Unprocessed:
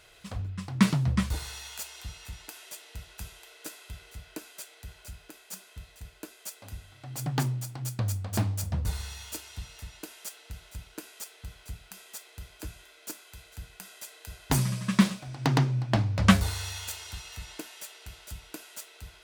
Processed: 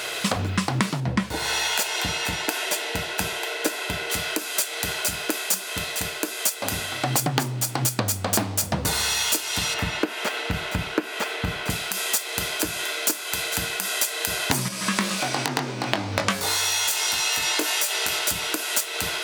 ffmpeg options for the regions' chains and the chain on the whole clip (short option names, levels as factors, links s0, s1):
-filter_complex "[0:a]asettb=1/sr,asplit=3[s0][s1][s2];[s0]atrim=end=1.004[s3];[s1]atrim=start=1:end=4.1,asetpts=PTS-STARTPTS,afade=t=in:d=0.004:c=qsin,afade=t=out:st=3.096:d=0.004:c=qsin,highshelf=f=3300:g=-10.5,bandreject=f=1200:w=6.6[s4];[s2]atrim=start=4.096[s5];[s3][s4]acrossfade=d=0.004:c1=hsin:c2=qsin[s6];[s6][s5]acrossfade=d=0.004:c1=qsin:c2=hsin,asettb=1/sr,asplit=3[s7][s8][s9];[s7]atrim=end=9.744[s10];[s8]atrim=start=9.74:end=11.7,asetpts=PTS-STARTPTS,afade=t=in:d=0.004:c=qsin,afade=t=out:st=1.956:d=0.004:c=qsin,acrossover=split=3800[s11][s12];[s12]acompressor=threshold=0.00316:ratio=4:attack=1:release=60[s13];[s11][s13]amix=inputs=2:normalize=0,bass=f=250:g=7,treble=f=4000:g=-12[s14];[s9]atrim=start=11.696[s15];[s10][s14]acrossfade=d=0.004:c1=hsin:c2=qsin[s16];[s16][s15]acrossfade=d=0.004:c1=qsin:c2=hsin,asettb=1/sr,asplit=3[s17][s18][s19];[s17]atrim=end=14.684[s20];[s18]atrim=start=14.68:end=18.19,asetpts=PTS-STARTPTS,afade=t=in:d=0.004:c=qsin,afade=t=out:st=3.506:d=0.004:c=qsin,bass=f=250:g=-7,treble=f=4000:g=1,acompressor=threshold=0.00631:ratio=2:attack=3.2:release=140:knee=1:detection=peak,asplit=2[s21][s22];[s22]adelay=20,volume=0.562[s23];[s21][s23]amix=inputs=2:normalize=0,atrim=end_sample=154791[s24];[s19]atrim=start=18.186[s25];[s20][s24]acrossfade=d=0.004:c1=hsin:c2=qsin[s26];[s26][s25]acrossfade=d=0.004:c1=qsin:c2=hsin,highpass=250,acompressor=threshold=0.00447:ratio=10,alimiter=level_in=25.1:limit=0.891:release=50:level=0:latency=1,volume=0.891"